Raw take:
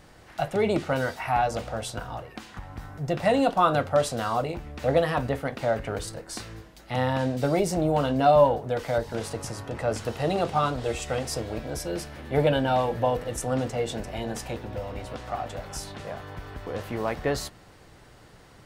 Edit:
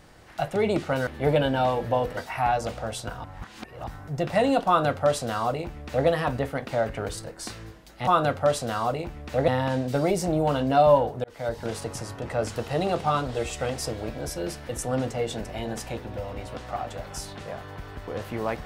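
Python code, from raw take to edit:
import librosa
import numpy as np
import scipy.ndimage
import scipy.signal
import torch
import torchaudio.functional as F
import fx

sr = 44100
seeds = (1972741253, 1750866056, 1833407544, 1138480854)

y = fx.edit(x, sr, fx.reverse_span(start_s=2.14, length_s=0.63),
    fx.duplicate(start_s=3.57, length_s=1.41, to_s=6.97),
    fx.fade_in_span(start_s=8.73, length_s=0.35),
    fx.move(start_s=12.18, length_s=1.1, to_s=1.07), tone=tone)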